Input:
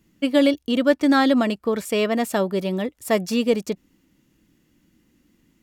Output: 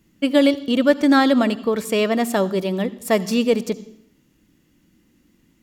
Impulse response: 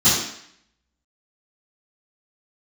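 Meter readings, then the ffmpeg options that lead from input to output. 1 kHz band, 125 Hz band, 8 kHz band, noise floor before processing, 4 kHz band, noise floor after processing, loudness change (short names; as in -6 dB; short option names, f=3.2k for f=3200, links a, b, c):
+2.0 dB, +2.0 dB, +2.0 dB, -65 dBFS, +2.0 dB, -61 dBFS, +2.0 dB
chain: -filter_complex "[0:a]asplit=2[a][b];[1:a]atrim=start_sample=2205,adelay=59[c];[b][c]afir=irnorm=-1:irlink=0,volume=-37dB[d];[a][d]amix=inputs=2:normalize=0,volume=2dB"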